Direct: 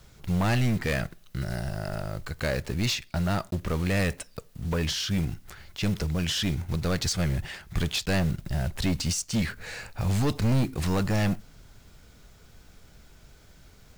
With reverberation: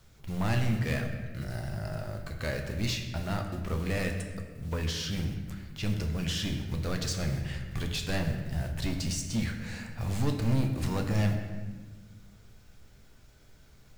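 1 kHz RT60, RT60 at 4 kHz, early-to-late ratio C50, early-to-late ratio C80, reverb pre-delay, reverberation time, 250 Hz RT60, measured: 1.1 s, 1.0 s, 6.0 dB, 7.5 dB, 8 ms, 1.3 s, 2.0 s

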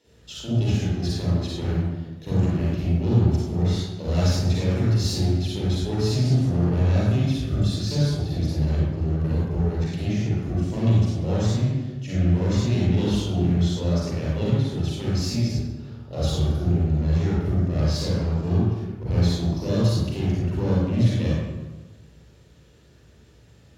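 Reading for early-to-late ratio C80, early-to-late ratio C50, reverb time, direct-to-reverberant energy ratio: 0.0 dB, −3.5 dB, 1.2 s, −7.0 dB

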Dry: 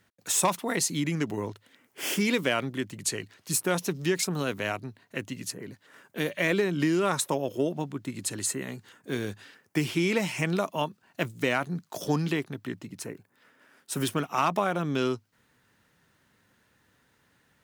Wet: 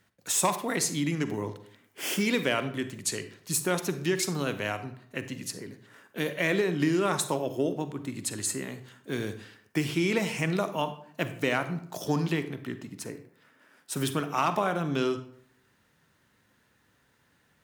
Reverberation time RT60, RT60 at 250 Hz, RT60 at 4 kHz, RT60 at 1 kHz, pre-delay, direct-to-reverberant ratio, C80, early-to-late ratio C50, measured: 0.60 s, 0.65 s, 0.40 s, 0.60 s, 39 ms, 10.0 dB, 15.0 dB, 11.5 dB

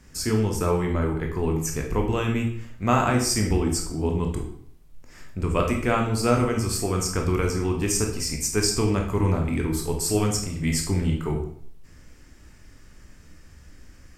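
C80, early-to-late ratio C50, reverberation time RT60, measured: 10.0 dB, 6.5 dB, 0.65 s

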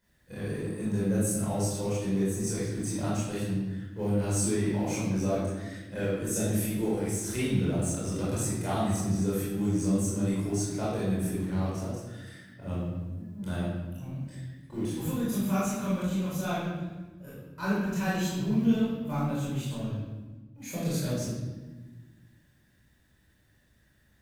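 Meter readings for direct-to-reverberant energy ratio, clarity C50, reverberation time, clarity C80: −9.5 dB, −1.5 dB, 1.3 s, 2.0 dB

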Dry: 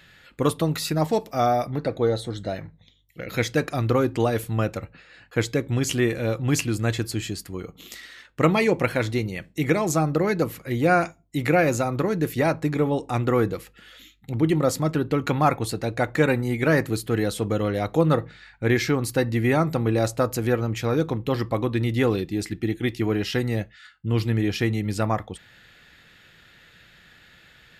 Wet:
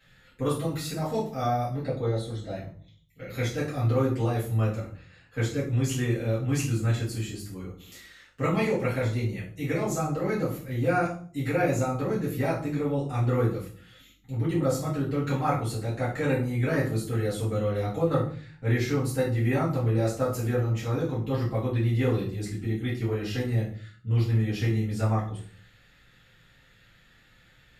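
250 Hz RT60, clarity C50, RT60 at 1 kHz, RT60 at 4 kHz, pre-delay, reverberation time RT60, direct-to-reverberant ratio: 0.65 s, 6.5 dB, 0.40 s, 0.35 s, 4 ms, 0.50 s, −9.5 dB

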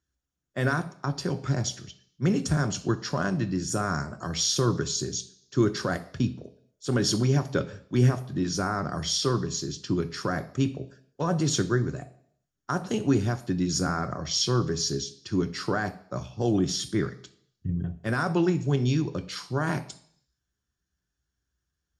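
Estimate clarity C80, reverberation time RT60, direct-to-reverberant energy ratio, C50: 18.5 dB, 0.60 s, 8.0 dB, 15.5 dB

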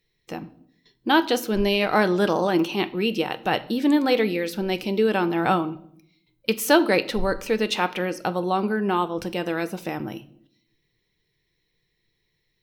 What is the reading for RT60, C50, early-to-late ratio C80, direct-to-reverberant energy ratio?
0.65 s, 18.0 dB, 21.5 dB, 11.0 dB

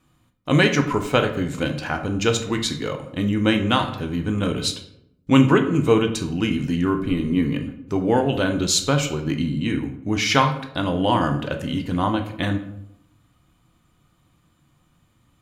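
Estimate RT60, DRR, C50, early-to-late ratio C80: 0.80 s, 5.0 dB, 9.5 dB, 13.0 dB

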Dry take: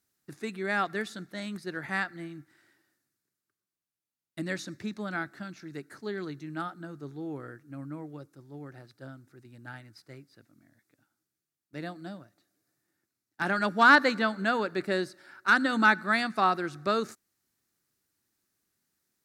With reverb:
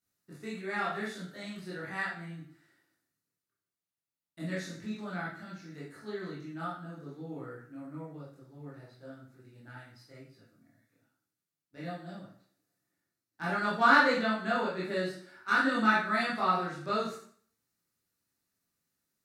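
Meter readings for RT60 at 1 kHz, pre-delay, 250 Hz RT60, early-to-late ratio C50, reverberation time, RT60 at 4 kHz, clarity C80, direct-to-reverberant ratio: 0.55 s, 13 ms, 0.55 s, 2.5 dB, 0.55 s, 0.50 s, 8.5 dB, −8.5 dB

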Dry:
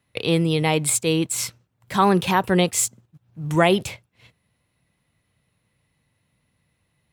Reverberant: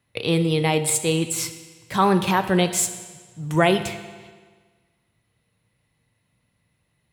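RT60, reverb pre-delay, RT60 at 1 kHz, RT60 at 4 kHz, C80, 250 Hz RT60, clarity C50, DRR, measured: 1.5 s, 9 ms, 1.5 s, 1.4 s, 12.0 dB, 1.5 s, 10.5 dB, 8.5 dB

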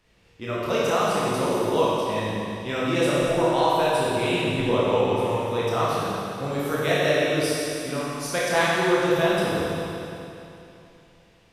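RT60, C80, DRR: 2.9 s, −2.0 dB, −7.5 dB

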